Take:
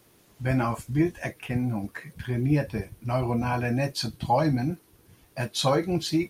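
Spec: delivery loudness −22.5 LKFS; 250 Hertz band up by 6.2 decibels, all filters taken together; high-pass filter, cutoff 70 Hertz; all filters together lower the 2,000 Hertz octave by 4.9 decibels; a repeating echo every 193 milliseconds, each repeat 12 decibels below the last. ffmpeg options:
ffmpeg -i in.wav -af "highpass=70,equalizer=frequency=250:width_type=o:gain=8,equalizer=frequency=2000:width_type=o:gain=-6.5,aecho=1:1:193|386|579:0.251|0.0628|0.0157,volume=1.5dB" out.wav

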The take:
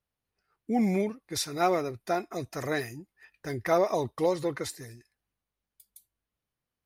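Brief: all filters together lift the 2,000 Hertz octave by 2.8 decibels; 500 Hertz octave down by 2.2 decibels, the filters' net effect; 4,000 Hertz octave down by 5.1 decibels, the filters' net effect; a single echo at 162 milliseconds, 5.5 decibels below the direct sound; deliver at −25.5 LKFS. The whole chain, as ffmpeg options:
ffmpeg -i in.wav -af "equalizer=frequency=500:width_type=o:gain=-3,equalizer=frequency=2000:width_type=o:gain=5,equalizer=frequency=4000:width_type=o:gain=-7.5,aecho=1:1:162:0.531,volume=4.5dB" out.wav

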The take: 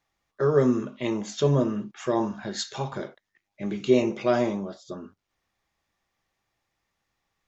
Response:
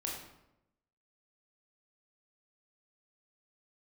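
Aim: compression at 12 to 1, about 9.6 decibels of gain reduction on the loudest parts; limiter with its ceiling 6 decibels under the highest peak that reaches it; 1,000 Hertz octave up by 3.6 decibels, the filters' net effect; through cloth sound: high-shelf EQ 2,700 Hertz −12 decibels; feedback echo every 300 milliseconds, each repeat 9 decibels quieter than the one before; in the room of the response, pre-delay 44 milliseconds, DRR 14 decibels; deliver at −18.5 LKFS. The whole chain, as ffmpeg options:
-filter_complex "[0:a]equalizer=frequency=1000:width_type=o:gain=6.5,acompressor=threshold=-23dB:ratio=12,alimiter=limit=-20dB:level=0:latency=1,aecho=1:1:300|600|900|1200:0.355|0.124|0.0435|0.0152,asplit=2[link_01][link_02];[1:a]atrim=start_sample=2205,adelay=44[link_03];[link_02][link_03]afir=irnorm=-1:irlink=0,volume=-15.5dB[link_04];[link_01][link_04]amix=inputs=2:normalize=0,highshelf=frequency=2700:gain=-12,volume=13.5dB"

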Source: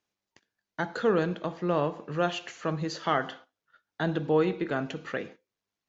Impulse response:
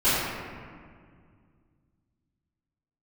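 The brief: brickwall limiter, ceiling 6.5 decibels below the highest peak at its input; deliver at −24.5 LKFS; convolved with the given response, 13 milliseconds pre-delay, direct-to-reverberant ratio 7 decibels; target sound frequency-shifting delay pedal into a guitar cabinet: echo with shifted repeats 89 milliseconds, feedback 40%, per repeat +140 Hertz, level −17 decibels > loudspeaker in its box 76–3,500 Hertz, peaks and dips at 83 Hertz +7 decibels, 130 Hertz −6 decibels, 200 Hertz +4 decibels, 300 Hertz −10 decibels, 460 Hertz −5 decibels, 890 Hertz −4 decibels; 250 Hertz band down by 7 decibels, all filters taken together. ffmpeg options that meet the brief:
-filter_complex "[0:a]equalizer=frequency=250:width_type=o:gain=-7,alimiter=limit=-19dB:level=0:latency=1,asplit=2[link_01][link_02];[1:a]atrim=start_sample=2205,adelay=13[link_03];[link_02][link_03]afir=irnorm=-1:irlink=0,volume=-24.5dB[link_04];[link_01][link_04]amix=inputs=2:normalize=0,asplit=4[link_05][link_06][link_07][link_08];[link_06]adelay=89,afreqshift=140,volume=-17dB[link_09];[link_07]adelay=178,afreqshift=280,volume=-25dB[link_10];[link_08]adelay=267,afreqshift=420,volume=-32.9dB[link_11];[link_05][link_09][link_10][link_11]amix=inputs=4:normalize=0,highpass=76,equalizer=frequency=83:width_type=q:width=4:gain=7,equalizer=frequency=130:width_type=q:width=4:gain=-6,equalizer=frequency=200:width_type=q:width=4:gain=4,equalizer=frequency=300:width_type=q:width=4:gain=-10,equalizer=frequency=460:width_type=q:width=4:gain=-5,equalizer=frequency=890:width_type=q:width=4:gain=-4,lowpass=frequency=3500:width=0.5412,lowpass=frequency=3500:width=1.3066,volume=10.5dB"

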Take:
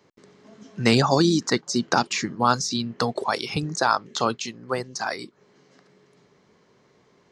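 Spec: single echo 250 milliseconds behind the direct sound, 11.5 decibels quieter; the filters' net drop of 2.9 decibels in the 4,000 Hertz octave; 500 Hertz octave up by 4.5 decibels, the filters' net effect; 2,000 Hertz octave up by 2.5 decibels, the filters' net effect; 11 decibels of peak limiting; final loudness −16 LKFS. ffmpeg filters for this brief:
ffmpeg -i in.wav -af "equalizer=frequency=500:width_type=o:gain=5.5,equalizer=frequency=2000:width_type=o:gain=4,equalizer=frequency=4000:width_type=o:gain=-4.5,alimiter=limit=-13dB:level=0:latency=1,aecho=1:1:250:0.266,volume=10dB" out.wav

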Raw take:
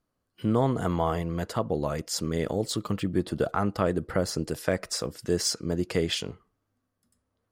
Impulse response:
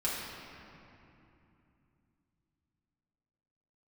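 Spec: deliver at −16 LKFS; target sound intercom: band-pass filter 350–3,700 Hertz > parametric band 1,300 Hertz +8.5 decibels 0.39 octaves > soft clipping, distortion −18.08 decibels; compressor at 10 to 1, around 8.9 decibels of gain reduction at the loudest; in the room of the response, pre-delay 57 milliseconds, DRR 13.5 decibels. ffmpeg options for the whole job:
-filter_complex "[0:a]acompressor=threshold=-29dB:ratio=10,asplit=2[link_01][link_02];[1:a]atrim=start_sample=2205,adelay=57[link_03];[link_02][link_03]afir=irnorm=-1:irlink=0,volume=-20dB[link_04];[link_01][link_04]amix=inputs=2:normalize=0,highpass=350,lowpass=3700,equalizer=frequency=1300:width_type=o:width=0.39:gain=8.5,asoftclip=threshold=-22dB,volume=22dB"

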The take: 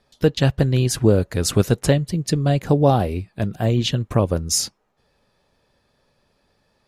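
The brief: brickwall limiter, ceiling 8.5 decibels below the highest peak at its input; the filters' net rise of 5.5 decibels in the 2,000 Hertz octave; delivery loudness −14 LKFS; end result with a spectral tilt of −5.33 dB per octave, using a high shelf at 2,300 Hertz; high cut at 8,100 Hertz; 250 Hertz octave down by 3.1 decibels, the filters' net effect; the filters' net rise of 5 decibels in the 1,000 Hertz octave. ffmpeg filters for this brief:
ffmpeg -i in.wav -af "lowpass=8100,equalizer=frequency=250:width_type=o:gain=-5,equalizer=frequency=1000:width_type=o:gain=7,equalizer=frequency=2000:width_type=o:gain=7,highshelf=frequency=2300:gain=-4.5,volume=9.5dB,alimiter=limit=-2dB:level=0:latency=1" out.wav

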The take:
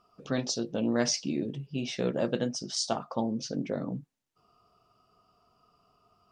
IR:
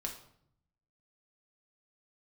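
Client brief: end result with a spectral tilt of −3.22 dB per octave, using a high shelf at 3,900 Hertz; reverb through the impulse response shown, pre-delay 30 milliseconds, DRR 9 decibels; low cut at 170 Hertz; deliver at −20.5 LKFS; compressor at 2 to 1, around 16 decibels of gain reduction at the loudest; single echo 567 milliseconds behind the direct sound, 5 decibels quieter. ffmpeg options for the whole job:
-filter_complex "[0:a]highpass=170,highshelf=frequency=3900:gain=5.5,acompressor=threshold=-52dB:ratio=2,aecho=1:1:567:0.562,asplit=2[link_01][link_02];[1:a]atrim=start_sample=2205,adelay=30[link_03];[link_02][link_03]afir=irnorm=-1:irlink=0,volume=-9dB[link_04];[link_01][link_04]amix=inputs=2:normalize=0,volume=22.5dB"

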